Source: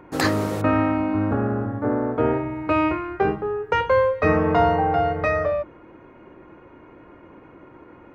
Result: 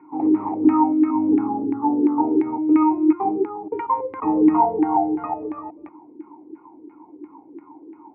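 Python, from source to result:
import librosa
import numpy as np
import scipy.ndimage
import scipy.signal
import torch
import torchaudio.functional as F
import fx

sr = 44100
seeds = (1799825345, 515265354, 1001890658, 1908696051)

y = fx.reverse_delay(x, sr, ms=184, wet_db=-4.5)
y = fx.filter_lfo_lowpass(y, sr, shape='saw_down', hz=2.9, low_hz=340.0, high_hz=1700.0, q=7.8)
y = fx.vowel_filter(y, sr, vowel='u')
y = y * librosa.db_to_amplitude(4.0)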